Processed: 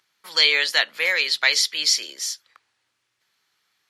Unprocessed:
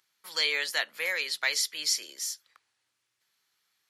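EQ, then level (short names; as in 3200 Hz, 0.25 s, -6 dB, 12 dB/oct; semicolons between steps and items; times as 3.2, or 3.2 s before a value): high shelf 6900 Hz -9.5 dB; dynamic EQ 3900 Hz, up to +6 dB, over -44 dBFS, Q 0.95; +7.5 dB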